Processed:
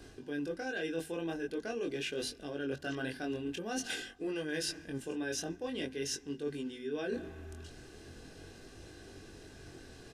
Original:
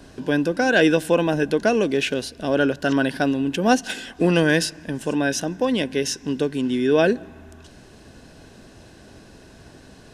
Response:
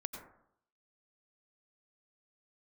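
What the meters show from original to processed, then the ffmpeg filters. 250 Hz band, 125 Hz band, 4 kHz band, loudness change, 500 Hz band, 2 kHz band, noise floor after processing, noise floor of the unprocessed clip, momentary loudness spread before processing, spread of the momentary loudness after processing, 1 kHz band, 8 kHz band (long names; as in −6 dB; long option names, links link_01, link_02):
−17.5 dB, −18.5 dB, −12.5 dB, −17.0 dB, −17.0 dB, −17.0 dB, −54 dBFS, −47 dBFS, 8 LU, 15 LU, −20.0 dB, −10.5 dB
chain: -af "equalizer=frequency=870:width_type=o:width=0.8:gain=-5.5,flanger=delay=20:depth=4.3:speed=0.45,aecho=1:1:2.5:0.41,areverse,acompressor=threshold=-32dB:ratio=10,areverse,bandreject=frequency=50:width_type=h:width=6,bandreject=frequency=100:width_type=h:width=6,bandreject=frequency=150:width_type=h:width=6,bandreject=frequency=200:width_type=h:width=6,bandreject=frequency=250:width_type=h:width=6,volume=-2dB"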